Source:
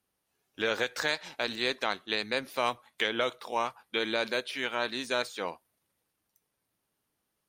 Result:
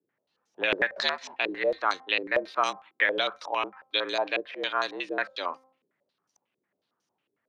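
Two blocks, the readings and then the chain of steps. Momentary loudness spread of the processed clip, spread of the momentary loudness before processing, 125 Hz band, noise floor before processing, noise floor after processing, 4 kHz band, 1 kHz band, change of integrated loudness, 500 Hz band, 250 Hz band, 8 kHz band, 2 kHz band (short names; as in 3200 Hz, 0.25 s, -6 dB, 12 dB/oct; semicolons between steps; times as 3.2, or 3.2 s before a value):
5 LU, 3 LU, n/a, -82 dBFS, -82 dBFS, +1.5 dB, +4.0 dB, +3.0 dB, +2.0 dB, -0.5 dB, -3.5 dB, +4.0 dB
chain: frequency shift +80 Hz; de-hum 262 Hz, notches 9; stepped low-pass 11 Hz 390–6000 Hz; gain -1 dB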